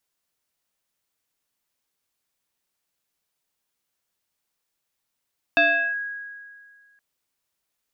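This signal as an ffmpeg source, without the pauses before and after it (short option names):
-f lavfi -i "aevalsrc='0.224*pow(10,-3*t/1.91)*sin(2*PI*1650*t+1.4*clip(1-t/0.38,0,1)*sin(2*PI*0.59*1650*t))':d=1.42:s=44100"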